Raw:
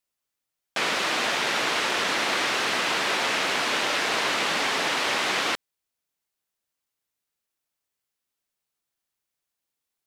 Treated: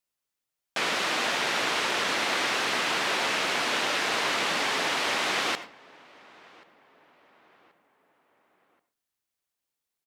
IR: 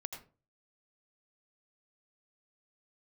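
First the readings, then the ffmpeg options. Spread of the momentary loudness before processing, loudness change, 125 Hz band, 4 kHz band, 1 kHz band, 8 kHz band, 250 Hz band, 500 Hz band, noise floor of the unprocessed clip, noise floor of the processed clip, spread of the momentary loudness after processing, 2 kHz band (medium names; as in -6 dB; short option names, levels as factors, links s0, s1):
2 LU, -2.0 dB, -2.0 dB, -2.0 dB, -2.0 dB, -2.0 dB, -2.0 dB, -2.0 dB, -85 dBFS, under -85 dBFS, 2 LU, -2.0 dB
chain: -filter_complex "[0:a]asplit=2[s0][s1];[s1]adelay=1081,lowpass=f=2100:p=1,volume=0.0668,asplit=2[s2][s3];[s3]adelay=1081,lowpass=f=2100:p=1,volume=0.5,asplit=2[s4][s5];[s5]adelay=1081,lowpass=f=2100:p=1,volume=0.5[s6];[s0][s2][s4][s6]amix=inputs=4:normalize=0,asplit=2[s7][s8];[1:a]atrim=start_sample=2205[s9];[s8][s9]afir=irnorm=-1:irlink=0,volume=0.794[s10];[s7][s10]amix=inputs=2:normalize=0,volume=0.501"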